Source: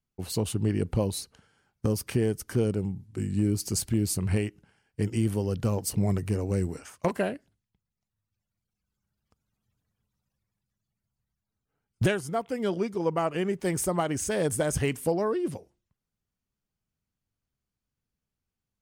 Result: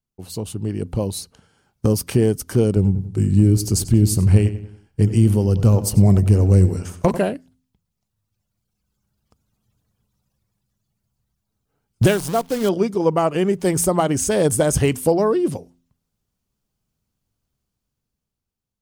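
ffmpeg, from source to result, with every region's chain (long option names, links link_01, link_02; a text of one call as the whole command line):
ffmpeg -i in.wav -filter_complex "[0:a]asettb=1/sr,asplit=3[link_01][link_02][link_03];[link_01]atrim=end=2.764[link_04];[link_02]atrim=start=2.76:end=7.18,asetpts=PTS-STARTPTS,afade=type=in:duration=0.004:curve=qsin,afade=type=out:start_time=4.416:duration=0.004:curve=qsin,lowshelf=frequency=130:gain=11.5,asplit=2[link_05][link_06];[link_06]adelay=94,lowpass=frequency=4400:poles=1,volume=-12.5dB,asplit=2[link_07][link_08];[link_08]adelay=94,lowpass=frequency=4400:poles=1,volume=0.43,asplit=2[link_09][link_10];[link_10]adelay=94,lowpass=frequency=4400:poles=1,volume=0.43,asplit=2[link_11][link_12];[link_12]adelay=94,lowpass=frequency=4400:poles=1,volume=0.43[link_13];[link_05][link_07][link_09][link_11][link_13]amix=inputs=5:normalize=0,atrim=end_sample=194922[link_14];[link_03]atrim=start=7.176[link_15];[link_04][link_14]acrossfade=duration=0.004:curve1=hsin:curve2=qsin[link_16];[link_16][link_15]acrossfade=duration=0.004:curve1=qsin:curve2=hsin,asettb=1/sr,asplit=3[link_17][link_18][link_19];[link_17]atrim=end=12.064[link_20];[link_18]atrim=start=12.06:end=12.69,asetpts=PTS-STARTPTS,afade=type=in:duration=0.004:curve=qsin,afade=type=out:start_time=0.626:duration=0.004:curve=qsin,asubboost=boost=7:cutoff=76,acrusher=bits=7:dc=4:mix=0:aa=0.000001[link_21];[link_19]atrim=start=12.686[link_22];[link_20][link_21]acrossfade=duration=0.004:curve1=hsin:curve2=qsin[link_23];[link_23][link_22]acrossfade=duration=0.004:curve1=qsin:curve2=hsin,equalizer=frequency=1900:width_type=o:width=1.1:gain=-5.5,bandreject=frequency=85.75:width_type=h:width=4,bandreject=frequency=171.5:width_type=h:width=4,bandreject=frequency=257.25:width_type=h:width=4,dynaudnorm=framelen=280:gausssize=9:maxgain=10dB" out.wav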